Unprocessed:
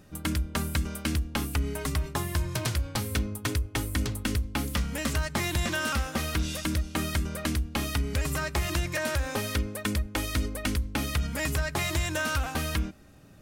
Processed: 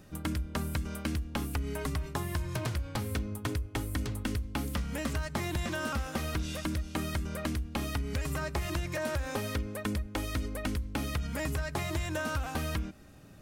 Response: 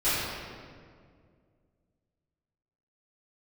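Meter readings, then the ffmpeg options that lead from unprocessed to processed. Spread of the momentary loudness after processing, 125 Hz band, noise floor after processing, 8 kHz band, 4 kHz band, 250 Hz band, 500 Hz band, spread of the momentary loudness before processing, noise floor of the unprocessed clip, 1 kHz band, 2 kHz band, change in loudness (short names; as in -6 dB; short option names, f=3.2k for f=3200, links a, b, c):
2 LU, -4.0 dB, -47 dBFS, -8.0 dB, -7.5 dB, -3.0 dB, -2.5 dB, 2 LU, -45 dBFS, -3.5 dB, -6.0 dB, -4.5 dB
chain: -filter_complex "[0:a]acrossover=split=1200|3000[a][b][c];[a]acompressor=threshold=-30dB:ratio=4[d];[b]acompressor=threshold=-44dB:ratio=4[e];[c]acompressor=threshold=-45dB:ratio=4[f];[d][e][f]amix=inputs=3:normalize=0"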